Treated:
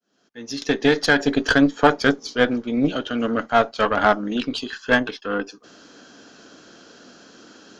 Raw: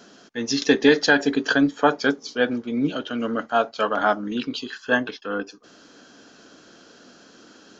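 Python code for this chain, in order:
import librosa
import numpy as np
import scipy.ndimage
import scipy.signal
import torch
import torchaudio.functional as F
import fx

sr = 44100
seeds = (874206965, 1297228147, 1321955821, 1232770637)

y = fx.fade_in_head(x, sr, length_s=1.52)
y = fx.cheby_harmonics(y, sr, harmonics=(4, 8), levels_db=(-20, -33), full_scale_db=-4.0)
y = y * 10.0 ** (2.5 / 20.0)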